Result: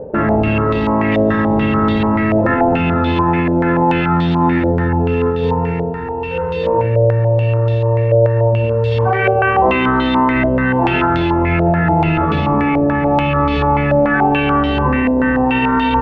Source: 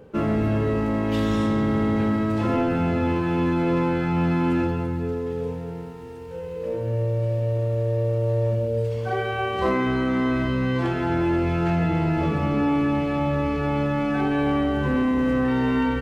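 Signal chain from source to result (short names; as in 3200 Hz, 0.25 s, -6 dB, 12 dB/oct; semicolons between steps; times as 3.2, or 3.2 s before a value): 4.17–4.89 median filter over 25 samples; in parallel at 0 dB: negative-ratio compressor -28 dBFS, ratio -1; on the sum: resonator 900 Hz, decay 0.3 s, mix 90%; added harmonics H 8 -27 dB, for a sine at -8.5 dBFS; on a send at -19 dB: reverb RT60 0.10 s, pre-delay 0.102 s; on the sum: maximiser +29 dB; stepped low-pass 6.9 Hz 620–3600 Hz; gain -7 dB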